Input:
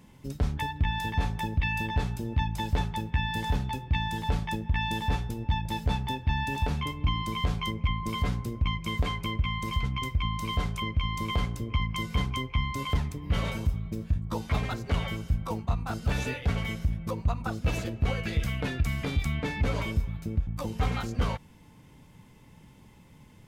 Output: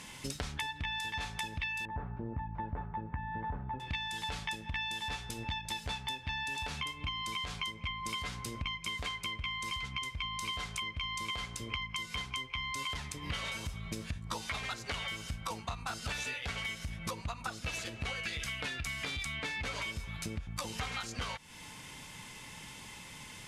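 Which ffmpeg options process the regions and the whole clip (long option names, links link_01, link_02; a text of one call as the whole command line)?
ffmpeg -i in.wav -filter_complex "[0:a]asettb=1/sr,asplit=3[link_01][link_02][link_03];[link_01]atrim=end=1.854[link_04];[link_02]atrim=start=1.85:end=3.8,asetpts=PTS-STARTPTS,afade=type=in:duration=0.004:curve=qsin,afade=type=out:start_time=1.946:duration=0.004:curve=qsin,lowpass=frequency=1400:width=0.5412,lowpass=frequency=1400:width=1.3066,tiltshelf=frequency=710:gain=3.5[link_05];[link_03]atrim=start=3.796[link_06];[link_04][link_05]acrossfade=duration=0.004:curve1=hsin:curve2=qsin[link_07];[link_07][link_06]acrossfade=duration=0.004:curve1=qsin:curve2=hsin,lowpass=frequency=11000:width=0.5412,lowpass=frequency=11000:width=1.3066,tiltshelf=frequency=850:gain=-10,acompressor=threshold=-43dB:ratio=12,volume=8dB" out.wav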